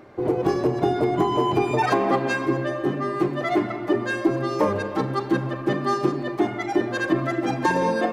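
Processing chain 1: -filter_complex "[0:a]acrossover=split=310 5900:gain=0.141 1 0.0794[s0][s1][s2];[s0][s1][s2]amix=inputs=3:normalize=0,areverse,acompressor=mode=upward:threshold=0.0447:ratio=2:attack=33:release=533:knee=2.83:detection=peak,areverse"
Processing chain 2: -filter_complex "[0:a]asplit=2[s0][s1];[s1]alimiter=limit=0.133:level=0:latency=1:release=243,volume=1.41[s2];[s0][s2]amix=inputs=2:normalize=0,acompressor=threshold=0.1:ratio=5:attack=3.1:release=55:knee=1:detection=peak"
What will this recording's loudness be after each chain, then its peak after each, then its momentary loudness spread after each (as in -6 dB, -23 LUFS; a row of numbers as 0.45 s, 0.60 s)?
-25.5 LUFS, -23.5 LUFS; -9.0 dBFS, -12.0 dBFS; 5 LU, 1 LU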